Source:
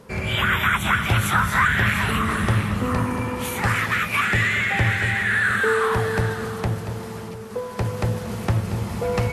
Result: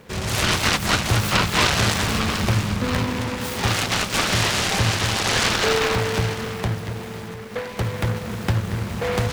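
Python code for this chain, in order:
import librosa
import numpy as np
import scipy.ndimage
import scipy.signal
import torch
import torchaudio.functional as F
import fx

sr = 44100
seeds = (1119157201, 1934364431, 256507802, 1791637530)

y = fx.noise_mod_delay(x, sr, seeds[0], noise_hz=1200.0, depth_ms=0.17)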